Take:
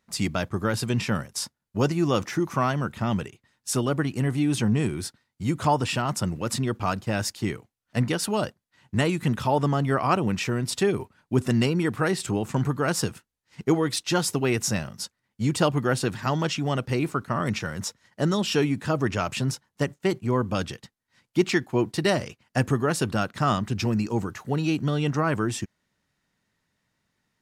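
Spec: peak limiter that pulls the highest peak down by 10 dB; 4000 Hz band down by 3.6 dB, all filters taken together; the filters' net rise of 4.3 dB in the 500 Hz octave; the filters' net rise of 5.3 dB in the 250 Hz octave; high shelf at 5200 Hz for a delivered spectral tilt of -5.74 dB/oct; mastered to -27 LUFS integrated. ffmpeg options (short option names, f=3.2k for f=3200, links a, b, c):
-af "equalizer=f=250:t=o:g=6,equalizer=f=500:t=o:g=3.5,equalizer=f=4k:t=o:g=-8,highshelf=f=5.2k:g=5,volume=-1.5dB,alimiter=limit=-16dB:level=0:latency=1"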